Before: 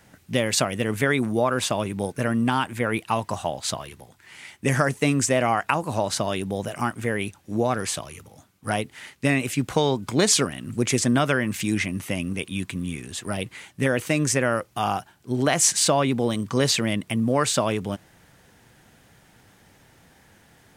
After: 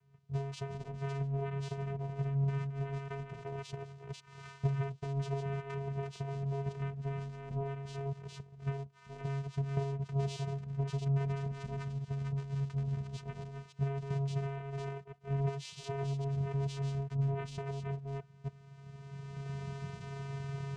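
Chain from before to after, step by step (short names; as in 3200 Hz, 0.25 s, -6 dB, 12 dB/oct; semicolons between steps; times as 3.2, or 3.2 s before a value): reverse delay 0.28 s, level -6 dB; recorder AGC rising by 17 dB/s; vocoder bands 4, square 138 Hz; flange 0.24 Hz, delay 2 ms, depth 4 ms, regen -75%; gain -9 dB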